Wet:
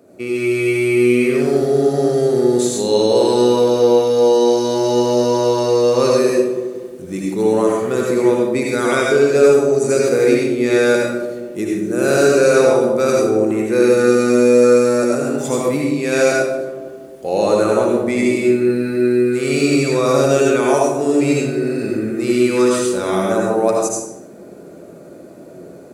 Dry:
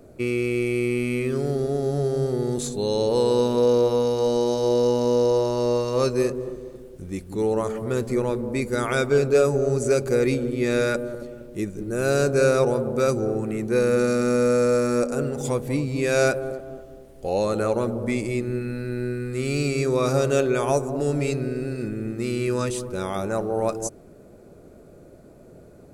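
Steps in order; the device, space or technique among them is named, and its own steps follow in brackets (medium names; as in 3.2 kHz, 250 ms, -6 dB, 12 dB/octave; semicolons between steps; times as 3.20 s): far laptop microphone (reverberation RT60 0.65 s, pre-delay 68 ms, DRR -2.5 dB; high-pass 180 Hz 12 dB/octave; level rider gain up to 6.5 dB)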